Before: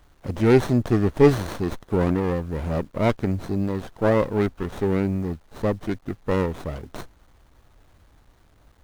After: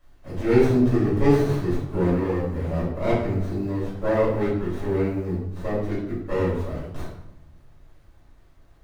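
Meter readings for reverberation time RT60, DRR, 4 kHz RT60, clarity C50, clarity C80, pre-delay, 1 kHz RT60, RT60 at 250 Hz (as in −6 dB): 0.85 s, −10.0 dB, 0.60 s, 1.5 dB, 5.0 dB, 3 ms, 0.75 s, 1.3 s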